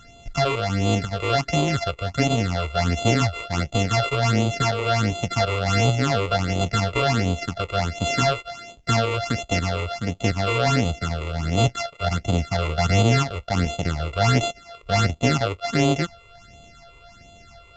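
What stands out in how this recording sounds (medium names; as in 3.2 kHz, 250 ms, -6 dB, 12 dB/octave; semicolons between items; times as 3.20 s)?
a buzz of ramps at a fixed pitch in blocks of 64 samples; phasing stages 8, 1.4 Hz, lowest notch 210–1700 Hz; µ-law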